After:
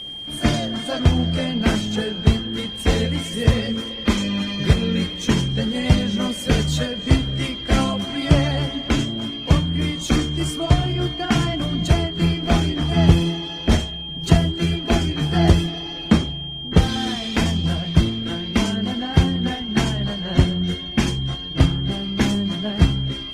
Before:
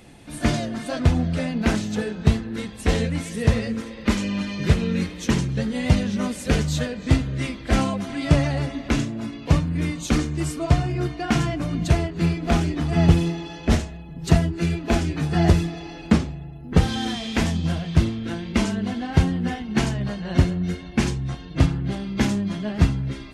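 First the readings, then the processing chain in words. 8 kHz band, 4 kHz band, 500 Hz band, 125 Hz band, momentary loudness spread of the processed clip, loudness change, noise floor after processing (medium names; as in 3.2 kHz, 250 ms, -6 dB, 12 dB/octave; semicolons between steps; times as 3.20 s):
+2.0 dB, +10.5 dB, +2.0 dB, +2.0 dB, 6 LU, +2.5 dB, -31 dBFS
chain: whistle 3.2 kHz -32 dBFS; trim +2 dB; Opus 20 kbps 48 kHz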